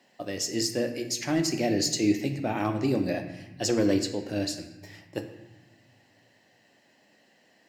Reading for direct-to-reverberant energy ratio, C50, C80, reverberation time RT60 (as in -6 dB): 5.0 dB, 9.0 dB, 10.5 dB, 1.0 s